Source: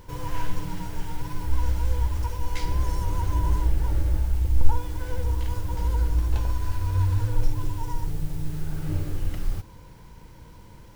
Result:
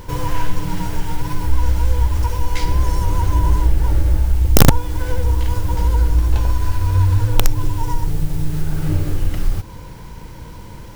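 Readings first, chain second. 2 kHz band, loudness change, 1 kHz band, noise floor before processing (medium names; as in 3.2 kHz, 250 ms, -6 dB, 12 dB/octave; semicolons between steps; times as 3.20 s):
+11.0 dB, +9.0 dB, +9.0 dB, -47 dBFS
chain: in parallel at +1.5 dB: compression 6:1, threshold -28 dBFS, peak gain reduction 20 dB; on the sum: integer overflow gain 7.5 dB; trim +5 dB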